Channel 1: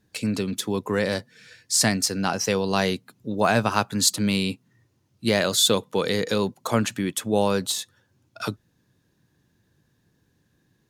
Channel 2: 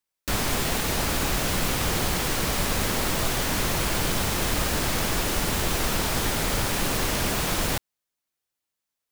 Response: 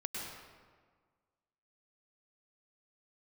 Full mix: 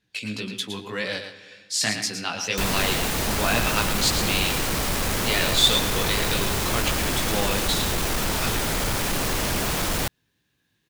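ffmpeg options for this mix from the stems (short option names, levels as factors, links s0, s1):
-filter_complex "[0:a]equalizer=f=2900:t=o:w=1.8:g=14,flanger=delay=15.5:depth=4.1:speed=1.9,volume=0.398,asplit=3[s0][s1][s2];[s1]volume=0.282[s3];[s2]volume=0.447[s4];[1:a]asoftclip=type=tanh:threshold=0.0841,adelay=2300,volume=1.41[s5];[2:a]atrim=start_sample=2205[s6];[s3][s6]afir=irnorm=-1:irlink=0[s7];[s4]aecho=0:1:113:1[s8];[s0][s5][s7][s8]amix=inputs=4:normalize=0"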